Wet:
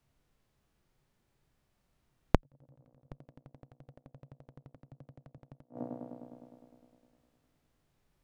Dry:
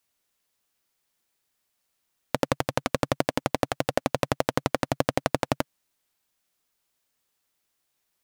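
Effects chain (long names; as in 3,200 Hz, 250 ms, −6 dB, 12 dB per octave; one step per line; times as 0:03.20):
delay with a band-pass on its return 102 ms, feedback 75%, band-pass 430 Hz, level −20 dB
harmonic and percussive parts rebalanced harmonic +8 dB
0:02.40–0:03.06: compressor whose output falls as the input rises −33 dBFS, ratio −1
parametric band 140 Hz +7.5 dB 0.43 octaves
gate with flip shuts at −22 dBFS, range −38 dB
spectral tilt −4 dB per octave
0:04.76–0:05.38: multiband upward and downward expander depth 40%
level −1.5 dB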